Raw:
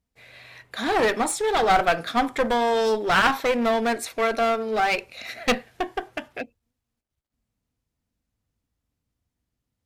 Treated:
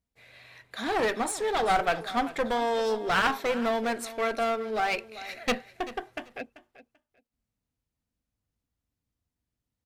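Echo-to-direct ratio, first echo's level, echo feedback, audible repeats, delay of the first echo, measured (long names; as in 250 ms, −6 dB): −16.0 dB, −16.0 dB, 20%, 2, 388 ms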